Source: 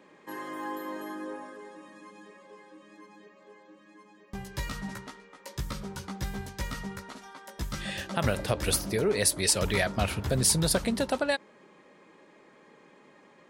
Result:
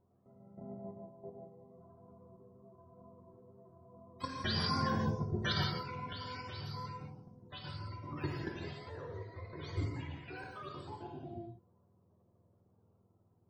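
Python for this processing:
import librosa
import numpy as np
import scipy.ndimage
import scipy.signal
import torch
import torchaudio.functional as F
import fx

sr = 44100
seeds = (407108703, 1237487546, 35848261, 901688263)

y = fx.octave_mirror(x, sr, pivot_hz=450.0)
y = fx.doppler_pass(y, sr, speed_mps=9, closest_m=1.5, pass_at_s=5.0)
y = fx.level_steps(y, sr, step_db=13)
y = fx.rev_gated(y, sr, seeds[0], gate_ms=210, shape='flat', drr_db=-0.5)
y = y * 10.0 ** (18.0 / 20.0)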